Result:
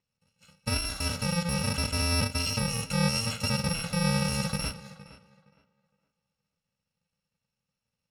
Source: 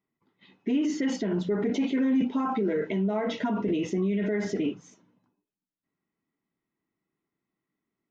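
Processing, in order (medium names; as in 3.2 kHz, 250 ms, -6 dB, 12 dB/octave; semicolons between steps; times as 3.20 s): bit-reversed sample order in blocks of 128 samples; low-pass 5.2 kHz 12 dB/octave; on a send: tape echo 464 ms, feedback 25%, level -15 dB, low-pass 2.7 kHz; on the sum: trim +6.5 dB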